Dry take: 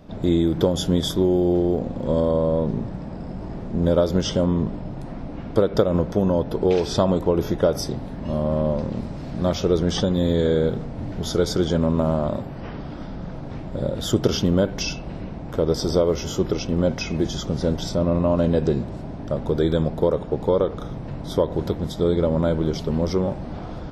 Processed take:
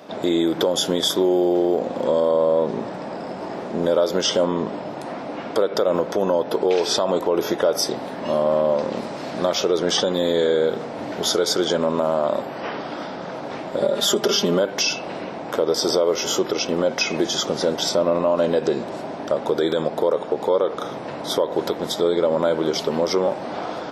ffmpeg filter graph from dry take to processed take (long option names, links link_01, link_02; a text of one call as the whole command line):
ffmpeg -i in.wav -filter_complex "[0:a]asettb=1/sr,asplit=3[link_01][link_02][link_03];[link_01]atrim=end=13.814[link_04];[link_02]atrim=start=13.81:end=14.59,asetpts=PTS-STARTPTS,afade=type=in:duration=0.004:curve=qsin,afade=type=out:start_time=0.776:duration=0.004:curve=qsin,bandreject=frequency=1500:width=23,aecho=1:1:5:0.88,atrim=end_sample=34398[link_05];[link_03]atrim=start=14.586[link_06];[link_04][link_05]acrossfade=duration=0.004:curve1=hsin:curve2=qsin[link_07];[link_07][link_06]acrossfade=duration=0.004:curve1=qsin:curve2=hsin,highpass=450,acompressor=threshold=-31dB:ratio=1.5,alimiter=level_in=19.5dB:limit=-1dB:release=50:level=0:latency=1,volume=-8.5dB" out.wav